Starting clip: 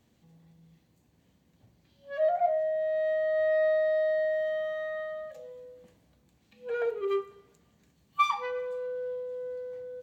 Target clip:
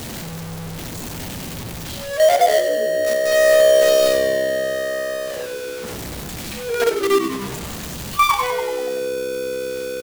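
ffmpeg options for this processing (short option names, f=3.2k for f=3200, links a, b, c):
-filter_complex "[0:a]aeval=exprs='val(0)+0.5*0.0266*sgn(val(0))':c=same,highshelf=f=3.5k:g=4,asplit=2[a][b];[b]acrusher=bits=3:mix=0:aa=0.000001,volume=-3.5dB[c];[a][c]amix=inputs=2:normalize=0,asplit=9[d][e][f][g][h][i][j][k][l];[e]adelay=96,afreqshift=-66,volume=-9dB[m];[f]adelay=192,afreqshift=-132,volume=-13dB[n];[g]adelay=288,afreqshift=-198,volume=-17dB[o];[h]adelay=384,afreqshift=-264,volume=-21dB[p];[i]adelay=480,afreqshift=-330,volume=-25.1dB[q];[j]adelay=576,afreqshift=-396,volume=-29.1dB[r];[k]adelay=672,afreqshift=-462,volume=-33.1dB[s];[l]adelay=768,afreqshift=-528,volume=-37.1dB[t];[d][m][n][o][p][q][r][s][t]amix=inputs=9:normalize=0,alimiter=level_in=10dB:limit=-1dB:release=50:level=0:latency=1,volume=-4.5dB"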